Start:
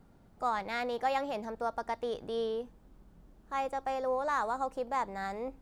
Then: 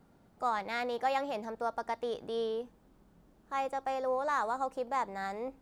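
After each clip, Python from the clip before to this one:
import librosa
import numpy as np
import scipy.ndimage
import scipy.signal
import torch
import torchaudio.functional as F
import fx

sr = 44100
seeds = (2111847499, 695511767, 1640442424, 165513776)

y = fx.low_shelf(x, sr, hz=79.0, db=-12.0)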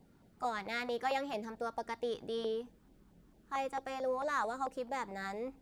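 y = fx.filter_lfo_notch(x, sr, shape='saw_down', hz=4.5, low_hz=450.0, high_hz=1500.0, q=1.2)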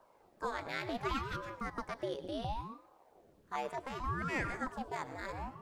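y = fx.rev_plate(x, sr, seeds[0], rt60_s=0.59, hf_ratio=0.8, predelay_ms=90, drr_db=11.5)
y = fx.ring_lfo(y, sr, carrier_hz=430.0, swing_pct=85, hz=0.69)
y = y * 10.0 ** (1.0 / 20.0)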